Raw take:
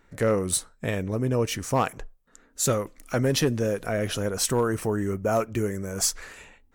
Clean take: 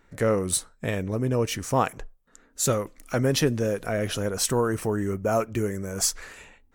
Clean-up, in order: clip repair -15 dBFS

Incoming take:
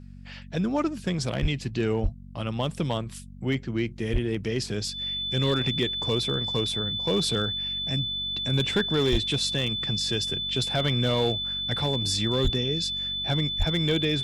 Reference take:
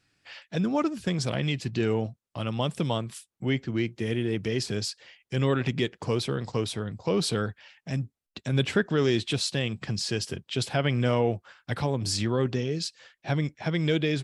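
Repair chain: clip repair -16.5 dBFS; de-hum 47.2 Hz, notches 5; notch 3500 Hz, Q 30; de-plosive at 1.41/2.02/4.12/9.11/12.43/13.58

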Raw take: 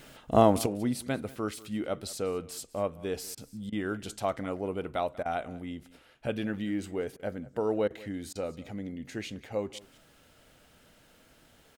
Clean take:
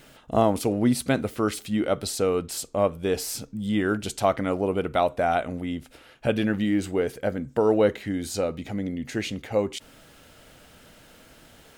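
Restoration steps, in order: interpolate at 3.35/3.7/5.23/7.17/7.88/8.33, 23 ms; inverse comb 0.19 s -20.5 dB; gain 0 dB, from 0.66 s +8.5 dB

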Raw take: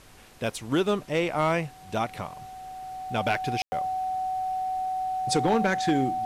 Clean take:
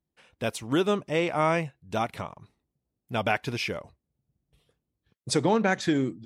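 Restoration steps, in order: clip repair -16 dBFS; notch 750 Hz, Q 30; room tone fill 3.62–3.72; denoiser 30 dB, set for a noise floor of -48 dBFS

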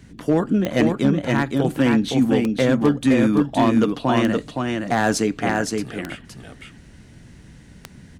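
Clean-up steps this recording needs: clip repair -9.5 dBFS; de-click; noise print and reduce 20 dB; inverse comb 0.517 s -4 dB

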